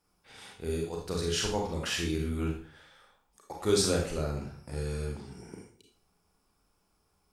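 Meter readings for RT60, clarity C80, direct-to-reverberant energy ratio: 0.50 s, 10.0 dB, 0.0 dB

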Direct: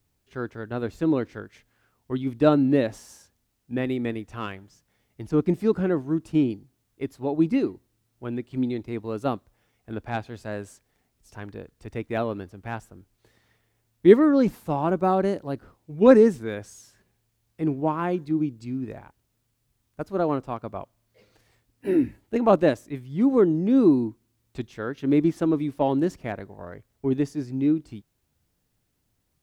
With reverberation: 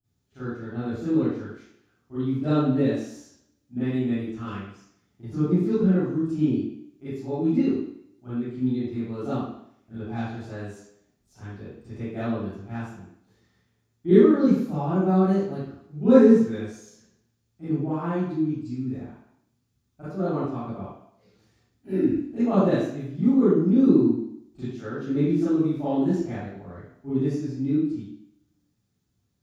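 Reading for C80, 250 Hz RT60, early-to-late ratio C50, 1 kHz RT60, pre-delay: 0.5 dB, 0.70 s, −4.5 dB, 0.70 s, 31 ms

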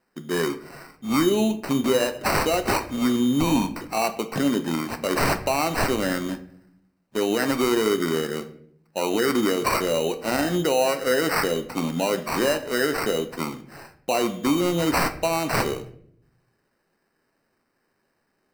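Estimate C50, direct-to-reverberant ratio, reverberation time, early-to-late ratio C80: 14.0 dB, 8.0 dB, 0.65 s, 17.0 dB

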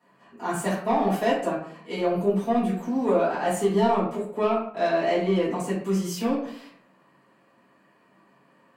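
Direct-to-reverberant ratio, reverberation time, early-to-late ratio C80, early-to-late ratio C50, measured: −12.0 dB, 0.60 s, 8.0 dB, 4.0 dB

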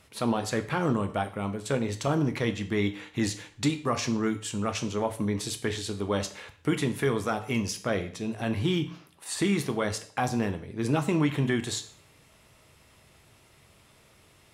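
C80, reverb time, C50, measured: 17.0 dB, 0.50 s, 13.5 dB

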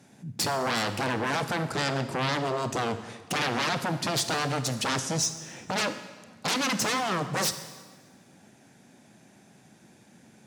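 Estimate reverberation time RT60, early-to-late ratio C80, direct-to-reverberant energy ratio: 1.4 s, 12.5 dB, 10.0 dB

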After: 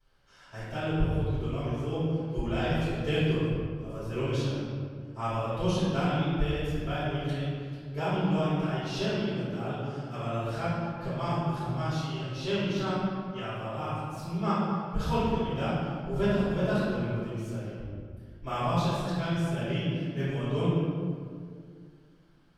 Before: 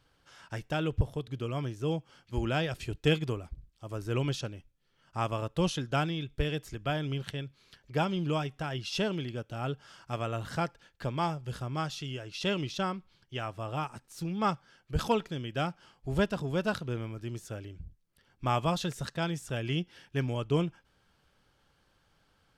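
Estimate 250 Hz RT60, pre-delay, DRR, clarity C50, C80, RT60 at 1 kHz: 2.8 s, 3 ms, −19.0 dB, −4.0 dB, −1.0 dB, 1.9 s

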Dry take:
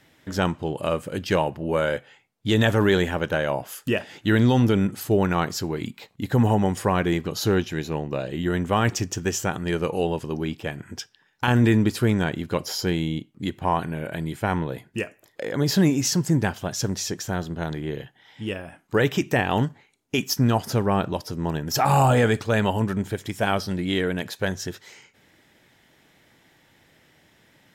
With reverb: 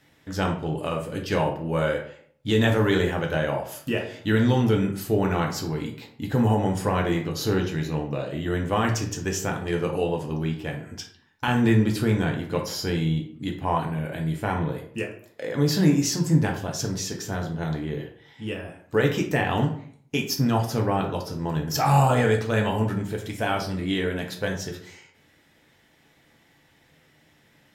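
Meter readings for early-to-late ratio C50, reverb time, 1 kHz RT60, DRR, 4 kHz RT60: 8.0 dB, 0.55 s, 0.55 s, 1.0 dB, 0.35 s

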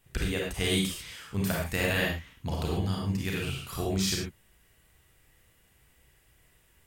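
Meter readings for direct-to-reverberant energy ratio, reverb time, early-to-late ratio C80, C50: −2.5 dB, non-exponential decay, 5.5 dB, 1.0 dB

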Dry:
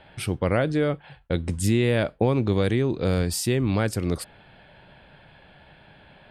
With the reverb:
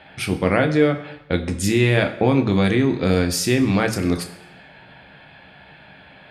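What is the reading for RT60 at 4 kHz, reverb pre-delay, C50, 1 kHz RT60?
0.95 s, 10 ms, 12.5 dB, 1.0 s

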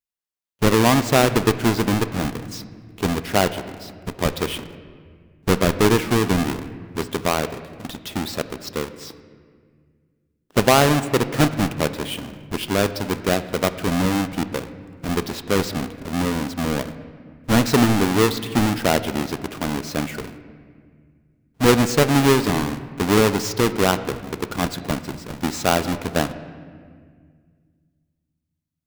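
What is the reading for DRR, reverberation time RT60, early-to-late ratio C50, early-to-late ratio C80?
11.5 dB, 1.9 s, 13.0 dB, 14.0 dB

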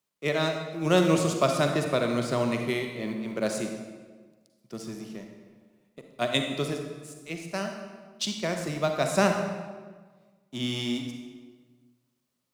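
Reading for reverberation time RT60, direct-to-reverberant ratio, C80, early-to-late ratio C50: 1.4 s, 3.5 dB, 6.5 dB, 4.5 dB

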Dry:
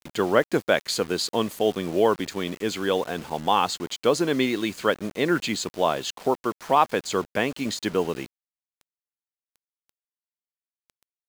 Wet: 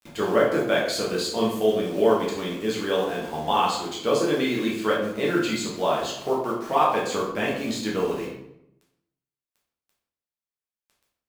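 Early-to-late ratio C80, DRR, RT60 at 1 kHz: 6.5 dB, −5.0 dB, 0.75 s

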